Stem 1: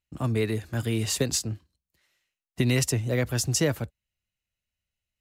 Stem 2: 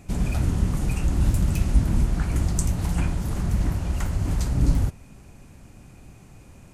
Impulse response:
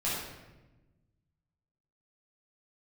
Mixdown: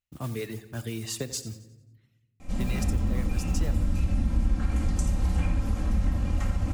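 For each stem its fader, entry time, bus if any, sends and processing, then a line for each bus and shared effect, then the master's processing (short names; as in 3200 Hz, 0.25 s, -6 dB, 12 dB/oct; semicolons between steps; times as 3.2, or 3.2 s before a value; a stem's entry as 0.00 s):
-5.5 dB, 0.00 s, send -21 dB, echo send -16 dB, modulation noise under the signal 17 dB; reverb removal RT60 0.84 s
-2.0 dB, 2.40 s, send -5 dB, no echo send, high shelf 9200 Hz -11 dB; comb 3.8 ms, depth 99%; auto duck -13 dB, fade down 0.35 s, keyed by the first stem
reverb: on, RT60 1.1 s, pre-delay 7 ms
echo: feedback echo 89 ms, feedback 45%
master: compressor 2:1, threshold -29 dBFS, peak gain reduction 12.5 dB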